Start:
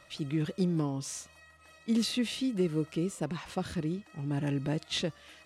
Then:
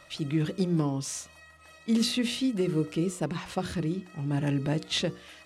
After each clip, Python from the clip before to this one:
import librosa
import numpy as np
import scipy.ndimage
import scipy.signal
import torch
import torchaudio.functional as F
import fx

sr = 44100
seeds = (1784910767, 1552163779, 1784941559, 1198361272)

y = fx.hum_notches(x, sr, base_hz=60, count=8)
y = y * 10.0 ** (4.0 / 20.0)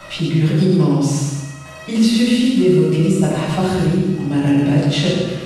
y = fx.echo_feedback(x, sr, ms=109, feedback_pct=44, wet_db=-4.0)
y = fx.room_shoebox(y, sr, seeds[0], volume_m3=720.0, walls='furnished', distance_m=7.3)
y = fx.band_squash(y, sr, depth_pct=40)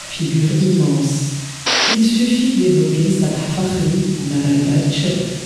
y = fx.dmg_noise_band(x, sr, seeds[1], low_hz=750.0, high_hz=8400.0, level_db=-32.0)
y = fx.dynamic_eq(y, sr, hz=1100.0, q=0.74, threshold_db=-36.0, ratio=4.0, max_db=-7)
y = fx.spec_paint(y, sr, seeds[2], shape='noise', start_s=1.66, length_s=0.29, low_hz=240.0, high_hz=6000.0, level_db=-15.0)